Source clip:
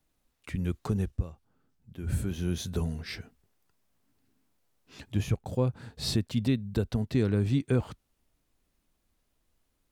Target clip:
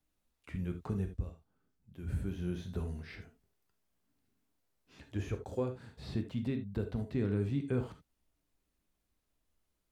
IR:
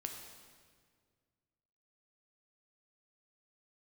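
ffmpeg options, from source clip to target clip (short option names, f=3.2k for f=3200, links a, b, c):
-filter_complex "[0:a]acrossover=split=2800[a][b];[b]acompressor=threshold=-56dB:ratio=4:attack=1:release=60[c];[a][c]amix=inputs=2:normalize=0,asettb=1/sr,asplit=3[d][e][f];[d]atrim=end=5.064[g];[e]atrim=start=5.06:end=5.75,asetpts=PTS-STARTPTS,afade=t=in:d=0.004:c=qsin,afade=t=out:st=0.686:d=0.004:c=qsin,equalizer=f=160:t=o:w=0.67:g=-10,equalizer=f=400:t=o:w=0.67:g=6,equalizer=f=1.6k:t=o:w=0.67:g=5,equalizer=f=6.3k:t=o:w=0.67:g=7[h];[f]atrim=start=5.746[i];[g][h]acrossfade=d=0.004:c1=hsin:c2=qsin[j];[j][i]acrossfade=d=0.004:c1=qsin:c2=hsin[k];[1:a]atrim=start_sample=2205,atrim=end_sample=3969[l];[k][l]afir=irnorm=-1:irlink=0,volume=-4dB"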